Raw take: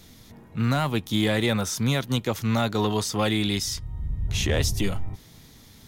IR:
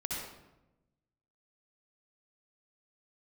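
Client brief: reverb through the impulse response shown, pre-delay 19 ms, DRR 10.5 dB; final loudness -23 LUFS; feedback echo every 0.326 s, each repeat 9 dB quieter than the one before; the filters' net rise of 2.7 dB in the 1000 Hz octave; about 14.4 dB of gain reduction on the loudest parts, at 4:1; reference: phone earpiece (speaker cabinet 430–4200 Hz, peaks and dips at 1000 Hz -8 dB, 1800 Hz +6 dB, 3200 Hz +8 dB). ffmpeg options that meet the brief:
-filter_complex "[0:a]equalizer=f=1k:t=o:g=7.5,acompressor=threshold=-36dB:ratio=4,aecho=1:1:326|652|978|1304:0.355|0.124|0.0435|0.0152,asplit=2[a][b];[1:a]atrim=start_sample=2205,adelay=19[c];[b][c]afir=irnorm=-1:irlink=0,volume=-13.5dB[d];[a][d]amix=inputs=2:normalize=0,highpass=430,equalizer=f=1k:t=q:w=4:g=-8,equalizer=f=1.8k:t=q:w=4:g=6,equalizer=f=3.2k:t=q:w=4:g=8,lowpass=f=4.2k:w=0.5412,lowpass=f=4.2k:w=1.3066,volume=16dB"

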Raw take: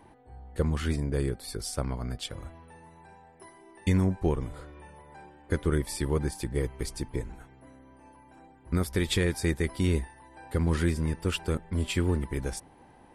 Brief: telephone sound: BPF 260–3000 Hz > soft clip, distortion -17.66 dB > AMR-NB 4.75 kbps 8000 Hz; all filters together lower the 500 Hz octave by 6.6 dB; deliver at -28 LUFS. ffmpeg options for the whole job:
-af "highpass=260,lowpass=3k,equalizer=f=500:t=o:g=-8,asoftclip=threshold=-24dB,volume=12.5dB" -ar 8000 -c:a libopencore_amrnb -b:a 4750

